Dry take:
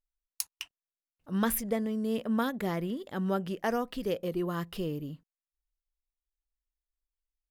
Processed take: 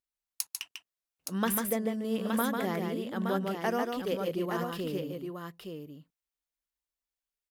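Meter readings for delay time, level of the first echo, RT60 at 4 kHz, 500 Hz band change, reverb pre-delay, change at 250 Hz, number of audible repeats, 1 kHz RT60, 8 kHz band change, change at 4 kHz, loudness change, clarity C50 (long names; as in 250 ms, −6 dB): 146 ms, −4.5 dB, no reverb audible, +1.0 dB, no reverb audible, −0.5 dB, 2, no reverb audible, +2.0 dB, +2.0 dB, 0.0 dB, no reverb audible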